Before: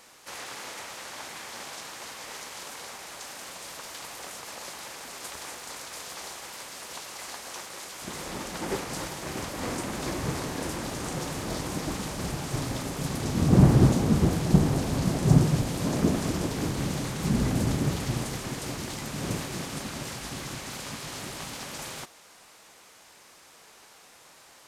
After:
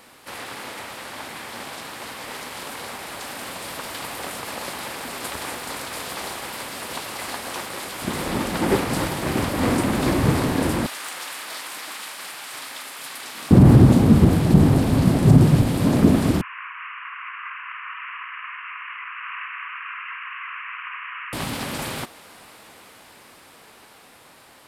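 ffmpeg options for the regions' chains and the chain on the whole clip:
-filter_complex "[0:a]asettb=1/sr,asplit=3[a][b][c];[a]atrim=end=10.864[d];[b]atrim=start=10.86:end=13.51,asetpts=PTS-STARTPTS,afade=t=in:d=0.004:c=qsin,afade=t=out:st=2.646:d=0.004:c=qsin,highpass=1.4k,volume=25dB,asoftclip=hard,volume=-25dB[e];[c]atrim=start=13.506[f];[d][e]acrossfade=d=0.004:c1=hsin:c2=qsin[g];[g][f]acrossfade=d=0.004:c1=qsin:c2=hsin,asettb=1/sr,asplit=3[h][i][j];[h]atrim=end=16.414[k];[i]atrim=start=16.41:end=21.33,asetpts=PTS-STARTPTS,afade=t=in:d=0.004:c=qsin,afade=t=out:st=4.916:d=0.004:c=qsin,asuperpass=centerf=1700:order=20:qfactor=0.93,asplit=2[l][m];[m]adelay=50,volume=-6dB[n];[l][n]amix=inputs=2:normalize=0,atrim=end_sample=216972[o];[j]atrim=start=21.326[p];[k][o]acrossfade=d=0.004:c1=hsin:c2=qsin[q];[q][p]acrossfade=d=0.004:c1=qsin:c2=hsin,equalizer=f=100:t=o:w=0.67:g=5,equalizer=f=250:t=o:w=0.67:g=5,equalizer=f=6.3k:t=o:w=0.67:g=-10,dynaudnorm=f=610:g=9:m=4.5dB,alimiter=level_in=7dB:limit=-1dB:release=50:level=0:latency=1,volume=-1.5dB"

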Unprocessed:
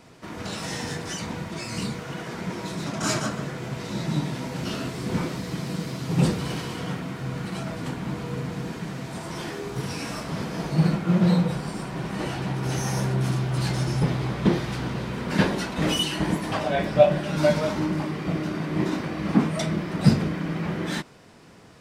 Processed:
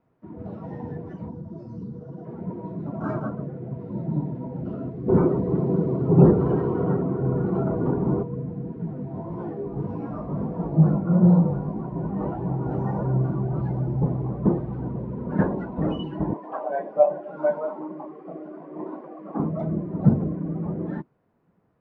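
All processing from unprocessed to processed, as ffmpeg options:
-filter_complex "[0:a]asettb=1/sr,asplit=3[a][b][c];[a]atrim=end=1.284[d];[b]atrim=start=1.28:end=2.25,asetpts=PTS-STARTPTS,afade=t=in:d=0.004:c=qsin,afade=t=out:st=0.966:d=0.004:c=qsin,equalizer=f=2.3k:w=1.8:g=-15,acompressor=threshold=-31dB:ratio=3:attack=3.2:release=140:knee=1:detection=peak,lowpass=f=5.8k:t=q:w=4.8[e];[c]atrim=start=2.246[f];[d][e]acrossfade=d=0.004:c1=hsin:c2=qsin[g];[g][f]acrossfade=d=0.004:c1=qsin:c2=hsin,asettb=1/sr,asplit=3[h][i][j];[h]atrim=end=5.084[k];[i]atrim=start=5.08:end=8.23,asetpts=PTS-STARTPTS,afade=t=in:d=0.004:c=qsin,afade=t=out:st=3.146:d=0.004:c=qsin,equalizer=f=390:w=4.1:g=11.5,acontrast=67[l];[j]atrim=start=8.226[m];[k][l]acrossfade=d=0.004:c1=hsin:c2=qsin[n];[n][m]acrossfade=d=0.004:c1=qsin:c2=hsin,asettb=1/sr,asplit=3[o][p][q];[o]atrim=end=8.784[r];[p]atrim=start=8.78:end=13.61,asetpts=PTS-STARTPTS,afade=t=in:d=0.004:c=qsin,afade=t=out:st=4.826:d=0.004:c=qsin,acontrast=37,flanger=delay=17:depth=3.8:speed=1.6[s];[q]atrim=start=13.606[t];[r][s]acrossfade=d=0.004:c1=hsin:c2=qsin[u];[u][t]acrossfade=d=0.004:c1=qsin:c2=hsin,asettb=1/sr,asplit=3[v][w][x];[v]atrim=end=16.334[y];[w]atrim=start=16.33:end=19.4,asetpts=PTS-STARTPTS,afade=t=in:d=0.004:c=qsin,afade=t=out:st=3.066:d=0.004:c=qsin,highpass=460,bandreject=f=3.9k:w=17[z];[x]atrim=start=19.396[aa];[y][z]acrossfade=d=0.004:c1=hsin:c2=qsin[ab];[ab][aa]acrossfade=d=0.004:c1=qsin:c2=hsin,lowpass=1.2k,afftdn=nr=17:nf=-32"

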